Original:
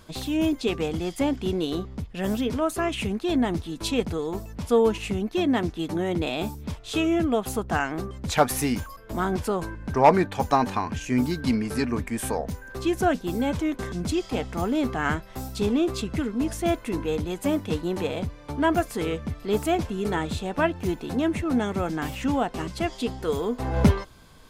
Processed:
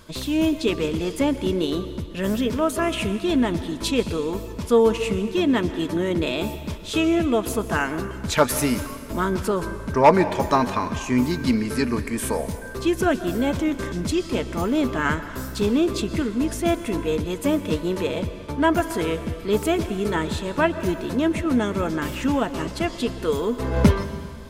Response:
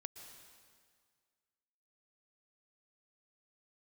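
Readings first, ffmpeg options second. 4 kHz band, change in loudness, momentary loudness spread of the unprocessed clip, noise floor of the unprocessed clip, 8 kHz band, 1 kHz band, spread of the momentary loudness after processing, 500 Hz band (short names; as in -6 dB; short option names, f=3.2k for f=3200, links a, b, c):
+3.5 dB, +3.0 dB, 7 LU, -45 dBFS, +3.5 dB, +1.5 dB, 7 LU, +3.5 dB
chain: -filter_complex "[0:a]asuperstop=centerf=760:order=4:qfactor=5.7,asplit=2[a][b];[b]equalizer=f=110:w=1.2:g=-5[c];[1:a]atrim=start_sample=2205[d];[c][d]afir=irnorm=-1:irlink=0,volume=6dB[e];[a][e]amix=inputs=2:normalize=0,volume=-3dB"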